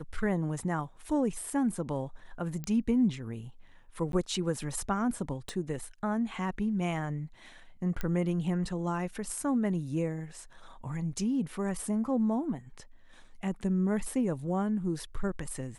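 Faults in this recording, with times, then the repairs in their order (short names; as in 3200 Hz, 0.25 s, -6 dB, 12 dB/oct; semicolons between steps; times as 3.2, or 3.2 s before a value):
2.64 pop -22 dBFS
4.12–4.13 gap 12 ms
5.49 pop -23 dBFS
8.01 pop -20 dBFS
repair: de-click; interpolate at 4.12, 12 ms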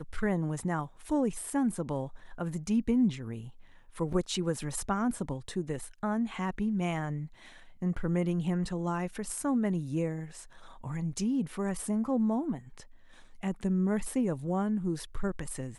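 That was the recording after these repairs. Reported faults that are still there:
5.49 pop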